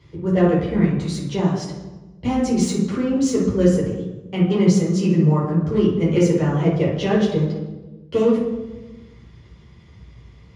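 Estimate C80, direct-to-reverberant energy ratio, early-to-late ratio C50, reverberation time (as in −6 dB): 6.0 dB, −7.0 dB, 2.0 dB, 1.2 s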